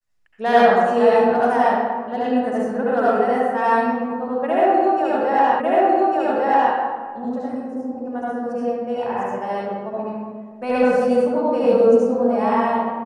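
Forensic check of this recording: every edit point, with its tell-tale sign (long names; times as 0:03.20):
0:05.60: the same again, the last 1.15 s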